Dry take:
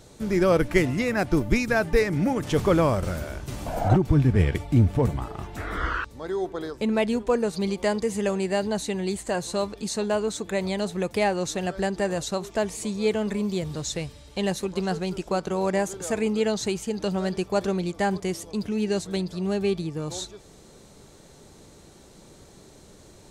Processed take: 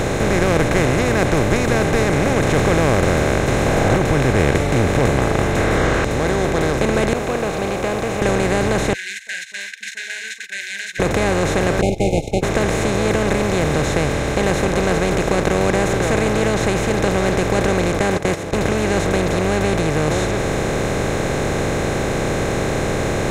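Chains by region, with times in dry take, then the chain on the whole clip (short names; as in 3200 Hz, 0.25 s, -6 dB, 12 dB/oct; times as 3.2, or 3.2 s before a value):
7.13–8.22 vowel filter a + requantised 12-bit, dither none
8.93–11 air absorption 160 m + gate -35 dBFS, range -49 dB + brick-wall FIR high-pass 1500 Hz
11.81–12.43 gate -27 dBFS, range -50 dB + brick-wall FIR band-stop 860–2100 Hz + tilt -3.5 dB/oct
17.99–18.53 HPF 170 Hz + gate -31 dBFS, range -34 dB
whole clip: per-bin compression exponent 0.2; notch 4500 Hz, Q 13; gain -4 dB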